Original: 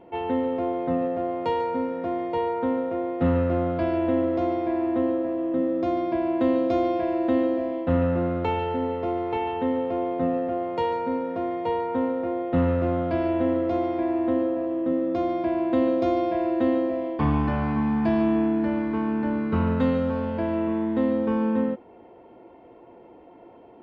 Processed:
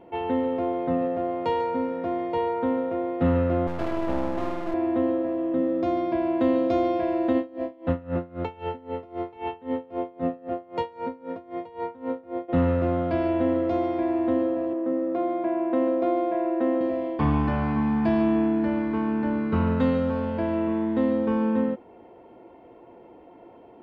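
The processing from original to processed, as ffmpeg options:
ffmpeg -i in.wav -filter_complex "[0:a]asettb=1/sr,asplit=3[link_01][link_02][link_03];[link_01]atrim=end=3.674[link_04];[link_02]atrim=start=3.67:end=4.74,asetpts=PTS-STARTPTS,afade=type=in:duration=0.004:curve=qsin,afade=type=out:start_time=1.066:duration=0.004:curve=qsin,aeval=exprs='max(val(0),0)':channel_layout=same[link_05];[link_03]atrim=start=4.736[link_06];[link_04][link_05]acrossfade=duration=0.004:curve1=hsin:curve2=qsin[link_07];[link_07][link_06]acrossfade=duration=0.004:curve1=qsin:curve2=hsin,asplit=3[link_08][link_09][link_10];[link_08]afade=type=out:start_time=7.32:duration=0.02[link_11];[link_09]aeval=exprs='val(0)*pow(10,-23*(0.5-0.5*cos(2*PI*3.8*n/s))/20)':channel_layout=same,afade=type=in:start_time=7.32:duration=0.02,afade=type=out:start_time=12.48:duration=0.02[link_12];[link_10]afade=type=in:start_time=12.48:duration=0.02[link_13];[link_11][link_12][link_13]amix=inputs=3:normalize=0,asettb=1/sr,asplit=3[link_14][link_15][link_16];[link_14]atrim=end=14.734[link_17];[link_15]atrim=start=14.73:end=16.81,asetpts=PTS-STARTPTS,afade=type=in:duration=0.004:curve=qsin,afade=type=out:start_time=2.076:duration=0.004:curve=qsin,highpass=260,lowpass=2000[link_18];[link_16]atrim=start=16.806[link_19];[link_17][link_18]acrossfade=duration=0.004:curve1=hsin:curve2=qsin[link_20];[link_20][link_19]acrossfade=duration=0.004:curve1=qsin:curve2=hsin" out.wav

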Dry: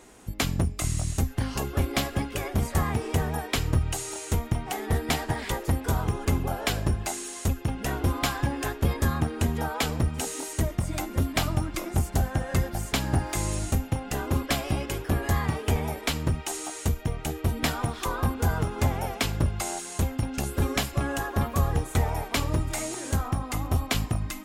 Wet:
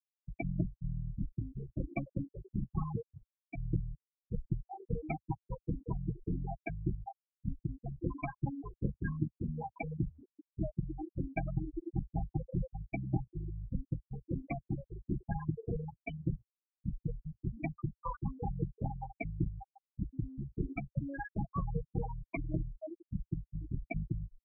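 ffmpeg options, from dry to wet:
ffmpeg -i in.wav -filter_complex "[0:a]asplit=2[link_01][link_02];[link_01]atrim=end=3.02,asetpts=PTS-STARTPTS,afade=type=out:start_time=3.016:duration=0.004:curve=hsin:silence=0.251189[link_03];[link_02]atrim=start=3.02,asetpts=PTS-STARTPTS,afade=type=in:duration=0.62:curve=qua:silence=0.251189[link_04];[link_03][link_04]concat=n=2:v=0:a=1,afftfilt=real='re*gte(hypot(re,im),0.178)':imag='im*gte(hypot(re,im),0.178)':win_size=1024:overlap=0.75,equalizer=frequency=74:width=1.8:gain=-7,aecho=1:1:6.1:0.62,volume=-6.5dB" out.wav

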